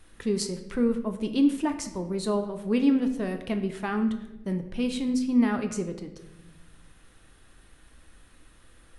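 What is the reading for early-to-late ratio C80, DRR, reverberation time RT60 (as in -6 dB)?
12.5 dB, 6.5 dB, 1.0 s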